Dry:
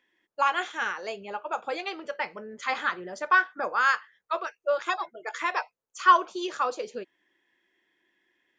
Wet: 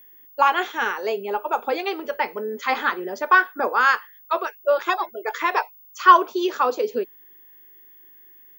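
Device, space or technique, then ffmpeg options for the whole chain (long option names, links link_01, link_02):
old television with a line whistle: -af "highpass=frequency=160:width=0.5412,highpass=frequency=160:width=1.3066,equalizer=frequency=160:width_type=q:width=4:gain=-5,equalizer=frequency=250:width_type=q:width=4:gain=8,equalizer=frequency=420:width_type=q:width=4:gain=10,equalizer=frequency=890:width_type=q:width=4:gain=5,lowpass=frequency=6500:width=0.5412,lowpass=frequency=6500:width=1.3066,aeval=exprs='val(0)+0.00282*sin(2*PI*15625*n/s)':channel_layout=same,volume=4.5dB"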